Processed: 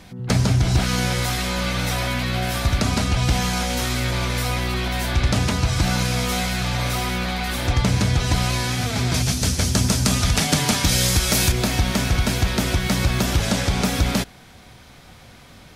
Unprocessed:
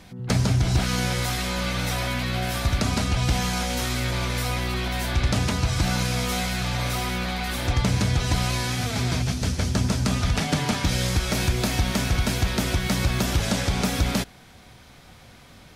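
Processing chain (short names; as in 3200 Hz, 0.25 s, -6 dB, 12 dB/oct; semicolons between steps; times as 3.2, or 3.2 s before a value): 9.14–11.52 high shelf 4900 Hz +11.5 dB; gain +3 dB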